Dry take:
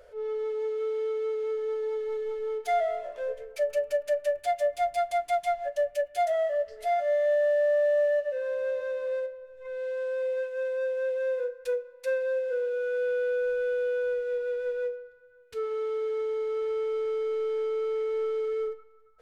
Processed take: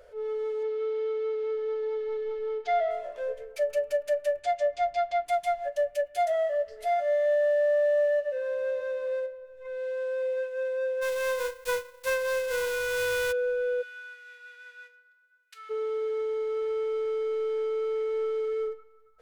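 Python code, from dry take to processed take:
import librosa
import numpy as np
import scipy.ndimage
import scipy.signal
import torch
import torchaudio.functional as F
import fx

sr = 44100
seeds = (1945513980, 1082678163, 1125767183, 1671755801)

y = fx.lowpass(x, sr, hz=5200.0, slope=24, at=(0.63, 2.91))
y = fx.lowpass(y, sr, hz=fx.line((4.39, 8000.0), (5.25, 4900.0)), slope=24, at=(4.39, 5.25), fade=0.02)
y = fx.envelope_flatten(y, sr, power=0.3, at=(11.01, 13.31), fade=0.02)
y = fx.highpass(y, sr, hz=1300.0, slope=24, at=(13.81, 15.69), fade=0.02)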